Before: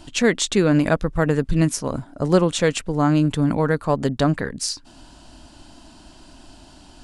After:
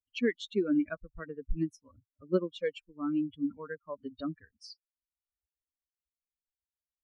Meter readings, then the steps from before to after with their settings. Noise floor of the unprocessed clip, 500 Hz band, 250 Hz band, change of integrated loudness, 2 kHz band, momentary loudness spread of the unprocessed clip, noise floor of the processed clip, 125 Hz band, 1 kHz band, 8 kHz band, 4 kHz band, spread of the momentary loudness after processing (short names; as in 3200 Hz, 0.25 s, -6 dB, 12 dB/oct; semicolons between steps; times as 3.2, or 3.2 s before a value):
-48 dBFS, -14.0 dB, -12.5 dB, -14.0 dB, -15.5 dB, 9 LU, under -85 dBFS, -23.5 dB, -21.5 dB, under -30 dB, -18.5 dB, 14 LU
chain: per-bin expansion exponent 3; air absorption 280 m; fixed phaser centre 330 Hz, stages 4; gain -4.5 dB